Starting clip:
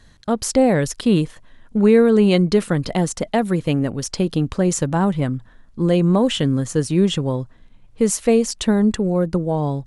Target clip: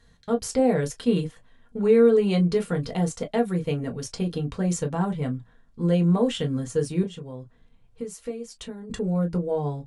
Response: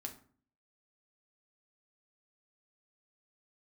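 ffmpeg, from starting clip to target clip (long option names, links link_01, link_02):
-filter_complex "[0:a]asettb=1/sr,asplit=3[link_01][link_02][link_03];[link_01]atrim=end=7.034[link_04];[link_02]atrim=start=7.03:end=8.9,asetpts=PTS-STARTPTS,afade=type=in:duration=0.004:curve=qsin,afade=type=out:start_time=1.866:duration=0.004:curve=qsin,acompressor=threshold=-27dB:ratio=6[link_05];[link_03]atrim=start=8.896[link_06];[link_04][link_05]acrossfade=duration=0.004:curve1=hsin:curve2=qsin[link_07];[link_07][link_06]acrossfade=duration=0.004:curve1=qsin:curve2=hsin[link_08];[1:a]atrim=start_sample=2205,atrim=end_sample=3528,asetrate=79380,aresample=44100[link_09];[link_08][link_09]afir=irnorm=-1:irlink=0"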